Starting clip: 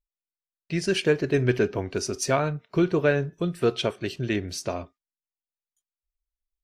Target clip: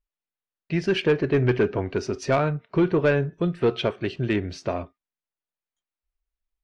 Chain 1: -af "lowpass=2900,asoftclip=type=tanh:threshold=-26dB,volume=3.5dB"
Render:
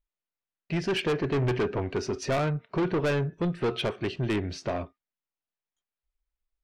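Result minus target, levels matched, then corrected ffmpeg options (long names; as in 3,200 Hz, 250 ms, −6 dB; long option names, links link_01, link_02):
soft clipping: distortion +10 dB
-af "lowpass=2900,asoftclip=type=tanh:threshold=-15.5dB,volume=3.5dB"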